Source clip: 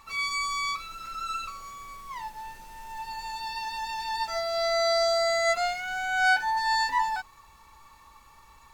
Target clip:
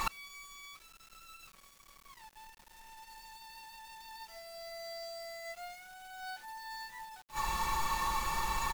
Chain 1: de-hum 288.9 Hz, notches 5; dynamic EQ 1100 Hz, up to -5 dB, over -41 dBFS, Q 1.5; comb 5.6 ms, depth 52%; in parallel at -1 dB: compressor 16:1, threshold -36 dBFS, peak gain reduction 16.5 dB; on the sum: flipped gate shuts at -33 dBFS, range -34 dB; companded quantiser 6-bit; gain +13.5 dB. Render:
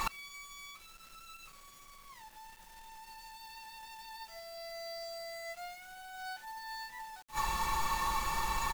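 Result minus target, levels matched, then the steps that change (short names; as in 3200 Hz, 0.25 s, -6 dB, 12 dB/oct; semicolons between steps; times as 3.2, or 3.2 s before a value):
compressor: peak gain reduction -9 dB
change: compressor 16:1, threshold -45.5 dBFS, peak gain reduction 25.5 dB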